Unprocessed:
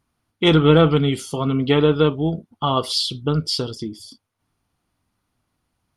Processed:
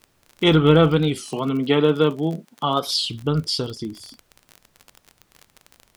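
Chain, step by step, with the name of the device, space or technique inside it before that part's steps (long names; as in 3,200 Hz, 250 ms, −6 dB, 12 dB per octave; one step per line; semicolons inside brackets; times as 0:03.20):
warped LP (wow of a warped record 33 1/3 rpm, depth 160 cents; surface crackle 36 per second −27 dBFS; pink noise bed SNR 42 dB)
0:01.21–0:02.87: high-pass filter 150 Hz 24 dB per octave
level −1 dB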